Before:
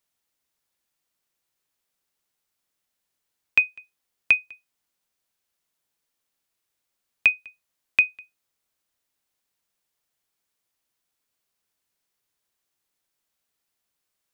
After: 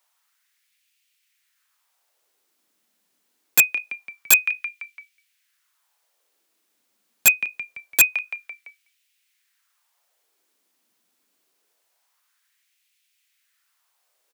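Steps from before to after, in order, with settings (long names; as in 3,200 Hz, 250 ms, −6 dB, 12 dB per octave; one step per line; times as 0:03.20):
auto-filter high-pass sine 0.25 Hz 220–2,500 Hz
echo with shifted repeats 169 ms, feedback 49%, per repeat −52 Hz, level −17.5 dB
wrap-around overflow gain 15 dB
level +8.5 dB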